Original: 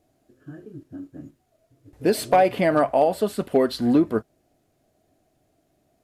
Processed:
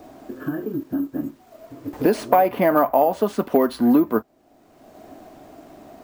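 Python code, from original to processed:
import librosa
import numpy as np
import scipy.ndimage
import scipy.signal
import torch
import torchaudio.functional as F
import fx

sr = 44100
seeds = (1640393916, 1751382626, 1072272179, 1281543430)

y = fx.graphic_eq(x, sr, hz=(125, 250, 1000, 4000, 8000), db=(-6, 6, 10, -4, -3))
y = np.repeat(y[::3], 3)[:len(y)]
y = fx.band_squash(y, sr, depth_pct=70)
y = y * librosa.db_to_amplitude(-1.5)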